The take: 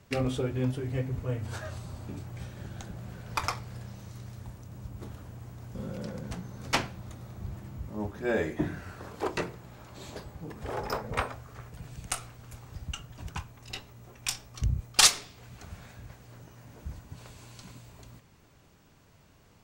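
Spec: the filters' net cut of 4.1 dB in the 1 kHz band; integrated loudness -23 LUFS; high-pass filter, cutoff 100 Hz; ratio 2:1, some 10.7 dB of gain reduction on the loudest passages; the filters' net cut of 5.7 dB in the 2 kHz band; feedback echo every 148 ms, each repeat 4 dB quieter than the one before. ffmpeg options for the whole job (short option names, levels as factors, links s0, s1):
-af "highpass=100,equalizer=f=1000:t=o:g=-3.5,equalizer=f=2000:t=o:g=-6.5,acompressor=threshold=0.0158:ratio=2,aecho=1:1:148|296|444|592|740|888|1036|1184|1332:0.631|0.398|0.25|0.158|0.0994|0.0626|0.0394|0.0249|0.0157,volume=6.31"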